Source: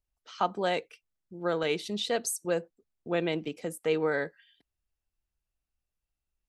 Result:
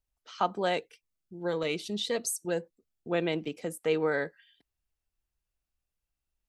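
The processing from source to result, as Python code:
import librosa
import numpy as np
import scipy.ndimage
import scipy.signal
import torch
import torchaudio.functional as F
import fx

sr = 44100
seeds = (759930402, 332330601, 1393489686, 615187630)

y = fx.notch_cascade(x, sr, direction='rising', hz=1.8, at=(0.77, 3.1), fade=0.02)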